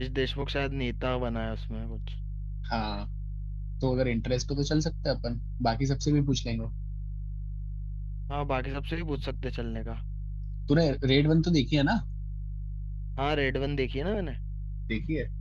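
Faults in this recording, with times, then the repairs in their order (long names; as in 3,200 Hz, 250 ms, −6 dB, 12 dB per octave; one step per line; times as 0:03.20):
mains hum 50 Hz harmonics 3 −35 dBFS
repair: hum removal 50 Hz, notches 3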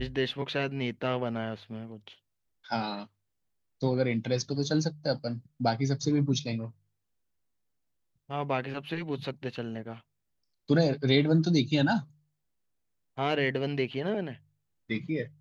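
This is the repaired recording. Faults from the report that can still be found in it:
none of them is left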